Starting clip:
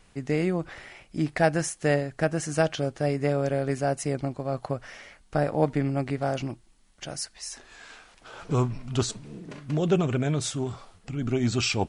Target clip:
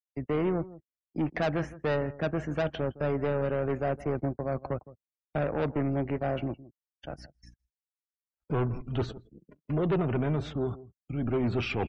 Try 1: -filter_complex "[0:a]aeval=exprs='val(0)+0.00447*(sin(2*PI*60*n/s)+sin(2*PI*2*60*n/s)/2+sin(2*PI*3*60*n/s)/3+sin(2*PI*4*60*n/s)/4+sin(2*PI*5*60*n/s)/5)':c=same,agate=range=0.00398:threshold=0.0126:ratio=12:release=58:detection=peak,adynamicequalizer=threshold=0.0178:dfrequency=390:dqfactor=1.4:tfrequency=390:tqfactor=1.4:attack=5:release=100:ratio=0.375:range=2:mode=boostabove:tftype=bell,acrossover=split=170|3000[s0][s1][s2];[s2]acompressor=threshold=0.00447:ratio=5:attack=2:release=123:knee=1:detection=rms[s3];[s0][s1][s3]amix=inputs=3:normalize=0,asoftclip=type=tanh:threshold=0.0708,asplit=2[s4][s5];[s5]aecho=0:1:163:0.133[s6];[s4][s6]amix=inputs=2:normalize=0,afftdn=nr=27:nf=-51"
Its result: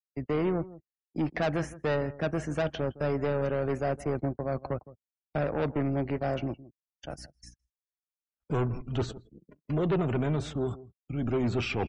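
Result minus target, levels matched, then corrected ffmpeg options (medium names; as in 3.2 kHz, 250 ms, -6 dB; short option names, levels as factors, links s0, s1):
compression: peak gain reduction -7.5 dB
-filter_complex "[0:a]aeval=exprs='val(0)+0.00447*(sin(2*PI*60*n/s)+sin(2*PI*2*60*n/s)/2+sin(2*PI*3*60*n/s)/3+sin(2*PI*4*60*n/s)/4+sin(2*PI*5*60*n/s)/5)':c=same,agate=range=0.00398:threshold=0.0126:ratio=12:release=58:detection=peak,adynamicequalizer=threshold=0.0178:dfrequency=390:dqfactor=1.4:tfrequency=390:tqfactor=1.4:attack=5:release=100:ratio=0.375:range=2:mode=boostabove:tftype=bell,acrossover=split=170|3000[s0][s1][s2];[s2]acompressor=threshold=0.0015:ratio=5:attack=2:release=123:knee=1:detection=rms[s3];[s0][s1][s3]amix=inputs=3:normalize=0,asoftclip=type=tanh:threshold=0.0708,asplit=2[s4][s5];[s5]aecho=0:1:163:0.133[s6];[s4][s6]amix=inputs=2:normalize=0,afftdn=nr=27:nf=-51"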